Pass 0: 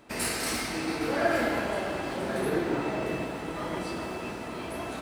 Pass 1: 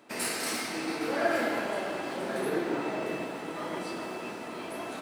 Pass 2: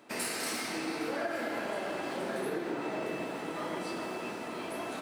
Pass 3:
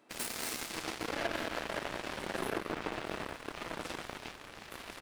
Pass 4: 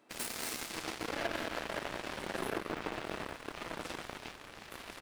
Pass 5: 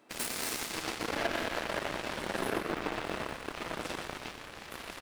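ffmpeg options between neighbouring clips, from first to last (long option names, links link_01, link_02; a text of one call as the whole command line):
ffmpeg -i in.wav -af "highpass=200,volume=-1.5dB" out.wav
ffmpeg -i in.wav -af "acompressor=threshold=-31dB:ratio=6" out.wav
ffmpeg -i in.wav -filter_complex "[0:a]asplit=2[link_01][link_02];[link_02]adelay=192.4,volume=-7dB,highshelf=frequency=4000:gain=-4.33[link_03];[link_01][link_03]amix=inputs=2:normalize=0,aeval=exprs='0.1*(cos(1*acos(clip(val(0)/0.1,-1,1)))-cos(1*PI/2))+0.02*(cos(7*acos(clip(val(0)/0.1,-1,1)))-cos(7*PI/2))':channel_layout=same" out.wav
ffmpeg -i in.wav -af "acrusher=bits=8:mode=log:mix=0:aa=0.000001,volume=-1dB" out.wav
ffmpeg -i in.wav -af "aecho=1:1:121:0.355,volume=3.5dB" out.wav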